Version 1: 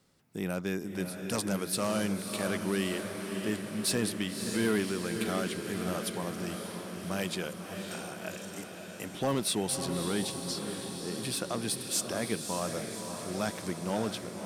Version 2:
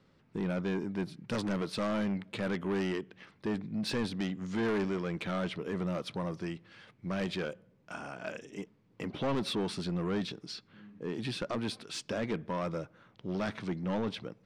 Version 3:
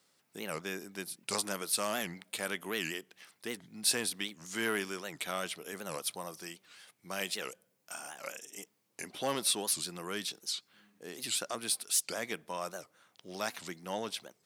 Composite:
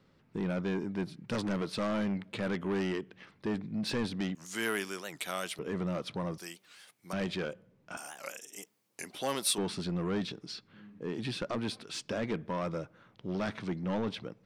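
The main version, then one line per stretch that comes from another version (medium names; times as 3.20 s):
2
4.35–5.59 s: from 3
6.38–7.13 s: from 3
7.97–9.58 s: from 3
not used: 1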